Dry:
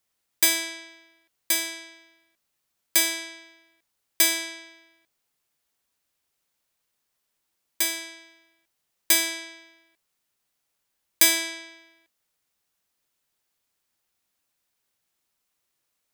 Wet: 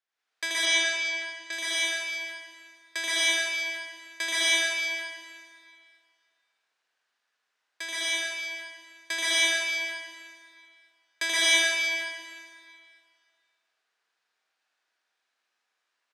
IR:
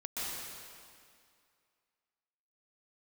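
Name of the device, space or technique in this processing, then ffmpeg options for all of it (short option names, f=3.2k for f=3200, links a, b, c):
station announcement: -filter_complex "[0:a]highpass=490,lowpass=4.4k,equalizer=f=1.6k:t=o:w=0.3:g=8,aecho=1:1:81.63|122.4:0.891|0.562[a];[1:a]atrim=start_sample=2205[b];[a][b]afir=irnorm=-1:irlink=0,asplit=3[c][d][e];[c]afade=t=out:st=0.65:d=0.02[f];[d]lowpass=f=8.2k:w=0.5412,lowpass=f=8.2k:w=1.3066,afade=t=in:st=0.65:d=0.02,afade=t=out:st=1.51:d=0.02[g];[e]afade=t=in:st=1.51:d=0.02[h];[f][g][h]amix=inputs=3:normalize=0,volume=-3dB"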